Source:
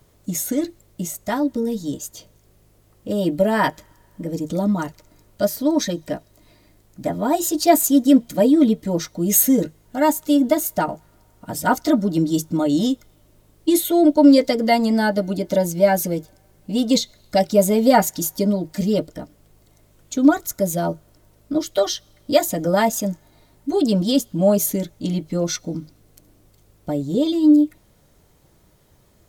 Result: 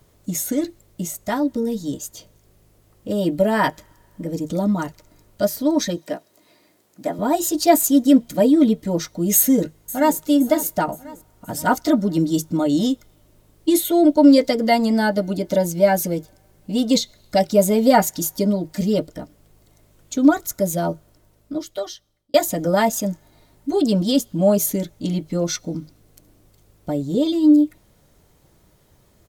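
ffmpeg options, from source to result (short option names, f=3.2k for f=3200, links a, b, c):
-filter_complex "[0:a]asettb=1/sr,asplit=3[a][b][c];[a]atrim=end=5.974[d];[b]atrim=start=5.97:end=7.19,asetpts=PTS-STARTPTS,afade=t=in:d=0.004:c=qsin,afade=t=out:st=1.216:d=0.004:c=qsin,highpass=260[e];[c]atrim=start=7.186[f];[d][e]acrossfade=d=0.004:c1=hsin:c2=qsin[g];[g][f]acrossfade=d=0.004:c1=qsin:c2=hsin,asplit=2[h][i];[i]afade=t=in:st=9.36:d=0.01,afade=t=out:st=10.17:d=0.01,aecho=0:1:520|1040|1560|2080:0.158489|0.0792447|0.0396223|0.0198112[j];[h][j]amix=inputs=2:normalize=0,asplit=2[k][l];[k]atrim=end=22.34,asetpts=PTS-STARTPTS,afade=t=out:st=20.9:d=1.44[m];[l]atrim=start=22.34,asetpts=PTS-STARTPTS,afade=t=in:d=0.004:c=hsin[n];[m][n]concat=n=2:v=0:a=1"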